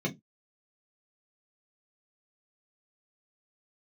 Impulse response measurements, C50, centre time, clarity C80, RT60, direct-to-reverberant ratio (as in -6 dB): 21.0 dB, 13 ms, 31.5 dB, 0.15 s, -2.0 dB